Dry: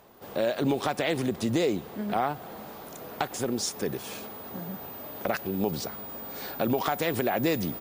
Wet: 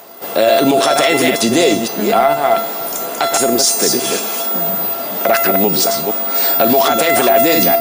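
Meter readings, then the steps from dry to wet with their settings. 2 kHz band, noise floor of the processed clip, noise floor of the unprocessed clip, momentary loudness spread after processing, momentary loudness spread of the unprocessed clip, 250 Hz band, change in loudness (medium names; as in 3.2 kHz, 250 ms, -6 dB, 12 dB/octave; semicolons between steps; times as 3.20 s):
+16.5 dB, -24 dBFS, -43 dBFS, 6 LU, 12 LU, +12.0 dB, +17.0 dB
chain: chunks repeated in reverse 235 ms, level -5.5 dB; high-pass 240 Hz 12 dB/octave; treble shelf 5.2 kHz +8 dB; feedback comb 680 Hz, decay 0.47 s, mix 90%; Chebyshev shaper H 8 -37 dB, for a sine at -17 dBFS; loudness maximiser +35 dB; trim -1 dB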